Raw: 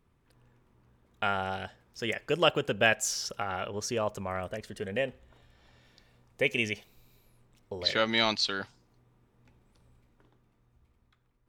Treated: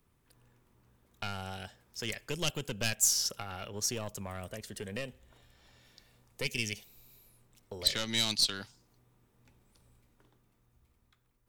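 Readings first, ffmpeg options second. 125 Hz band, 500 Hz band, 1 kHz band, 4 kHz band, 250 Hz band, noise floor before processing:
-1.0 dB, -11.0 dB, -11.5 dB, -0.5 dB, -5.5 dB, -70 dBFS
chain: -filter_complex "[0:a]aeval=exprs='(tanh(7.94*val(0)+0.55)-tanh(0.55))/7.94':c=same,crystalizer=i=2:c=0,acrossover=split=250|3000[a][b][c];[b]acompressor=threshold=-43dB:ratio=2.5[d];[a][d][c]amix=inputs=3:normalize=0"

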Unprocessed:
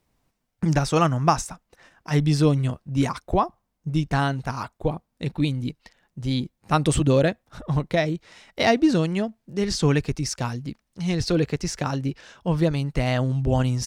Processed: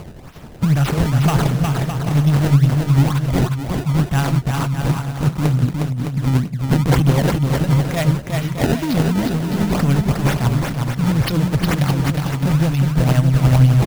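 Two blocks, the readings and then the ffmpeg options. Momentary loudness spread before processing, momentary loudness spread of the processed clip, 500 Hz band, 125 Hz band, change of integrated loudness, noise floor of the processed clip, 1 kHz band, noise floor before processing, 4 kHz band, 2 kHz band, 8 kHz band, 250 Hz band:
12 LU, 6 LU, 0.0 dB, +10.0 dB, +6.5 dB, -34 dBFS, +1.5 dB, -76 dBFS, +3.0 dB, +4.0 dB, +2.0 dB, +6.0 dB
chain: -af "acompressor=mode=upward:threshold=-28dB:ratio=2.5,asoftclip=type=tanh:threshold=-21dB,tremolo=f=11:d=0.4,aexciter=amount=1.4:drive=5.7:freq=2.7k,equalizer=f=380:t=o:w=1.1:g=-9,acrusher=samples=23:mix=1:aa=0.000001:lfo=1:lforange=36.8:lforate=2.1,equalizer=f=130:t=o:w=2.7:g=7.5,aecho=1:1:360|612|788.4|911.9|998.3:0.631|0.398|0.251|0.158|0.1,volume=7dB"

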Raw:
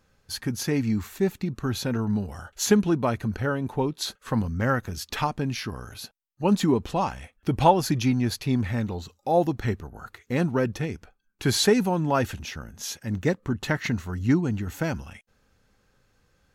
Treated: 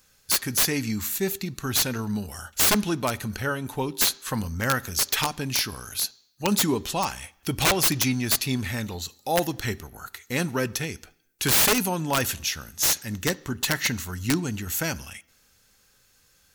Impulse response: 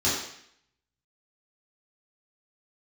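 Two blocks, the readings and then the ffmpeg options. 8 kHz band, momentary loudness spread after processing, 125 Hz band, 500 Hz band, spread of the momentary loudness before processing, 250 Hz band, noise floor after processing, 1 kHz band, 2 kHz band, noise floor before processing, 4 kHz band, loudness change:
+10.0 dB, 11 LU, -3.5 dB, -4.0 dB, 13 LU, -3.5 dB, -62 dBFS, -2.0 dB, +4.5 dB, -68 dBFS, +7.0 dB, +1.5 dB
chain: -filter_complex "[0:a]crystalizer=i=8:c=0,aeval=exprs='(mod(2.99*val(0)+1,2)-1)/2.99':c=same,asplit=2[a][b];[1:a]atrim=start_sample=2205,lowpass=6.2k[c];[b][c]afir=irnorm=-1:irlink=0,volume=-32dB[d];[a][d]amix=inputs=2:normalize=0,volume=-4dB"

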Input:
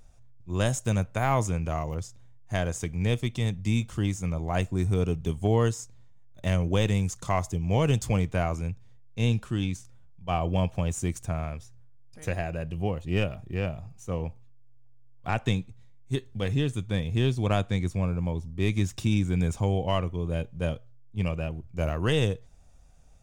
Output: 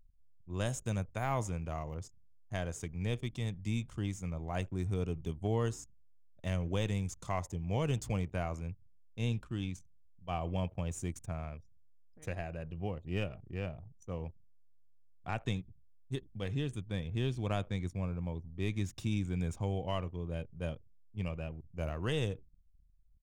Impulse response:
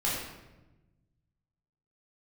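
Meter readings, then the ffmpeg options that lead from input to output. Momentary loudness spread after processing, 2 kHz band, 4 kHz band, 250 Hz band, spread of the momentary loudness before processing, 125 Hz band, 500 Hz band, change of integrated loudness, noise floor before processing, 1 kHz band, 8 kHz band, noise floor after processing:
10 LU, -9.0 dB, -9.0 dB, -9.0 dB, 9 LU, -9.0 dB, -9.0 dB, -9.0 dB, -49 dBFS, -9.0 dB, -9.0 dB, -60 dBFS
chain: -filter_complex "[0:a]asplit=4[a][b][c][d];[b]adelay=83,afreqshift=-87,volume=-24dB[e];[c]adelay=166,afreqshift=-174,volume=-31.5dB[f];[d]adelay=249,afreqshift=-261,volume=-39.1dB[g];[a][e][f][g]amix=inputs=4:normalize=0,anlmdn=0.0398,volume=-9dB"

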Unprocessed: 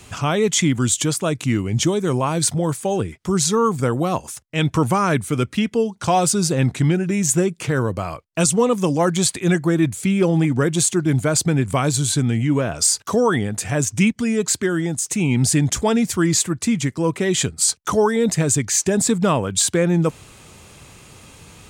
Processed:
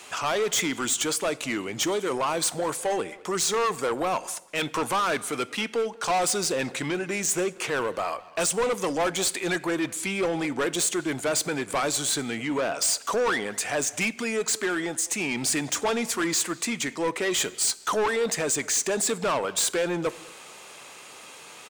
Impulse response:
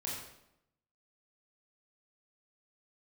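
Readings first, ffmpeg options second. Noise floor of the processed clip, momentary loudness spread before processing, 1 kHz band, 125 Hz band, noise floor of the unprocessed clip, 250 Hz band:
-46 dBFS, 5 LU, -4.0 dB, -20.0 dB, -48 dBFS, -12.0 dB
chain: -filter_complex "[0:a]highpass=510,highshelf=f=5.5k:g=-4,asoftclip=type=tanh:threshold=-24dB,asplit=2[a][b];[b]adelay=200,highpass=300,lowpass=3.4k,asoftclip=type=hard:threshold=-33dB,volume=-16dB[c];[a][c]amix=inputs=2:normalize=0,asplit=2[d][e];[1:a]atrim=start_sample=2205,asetrate=37485,aresample=44100[f];[e][f]afir=irnorm=-1:irlink=0,volume=-20dB[g];[d][g]amix=inputs=2:normalize=0,volume=2.5dB"

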